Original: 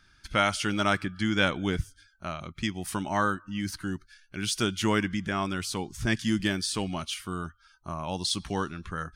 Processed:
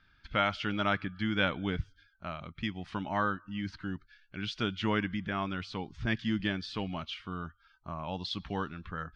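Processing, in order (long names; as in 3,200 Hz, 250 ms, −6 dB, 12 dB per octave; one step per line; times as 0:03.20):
low-pass filter 3,900 Hz 24 dB per octave
parametric band 360 Hz −5.5 dB 0.2 octaves
level −4 dB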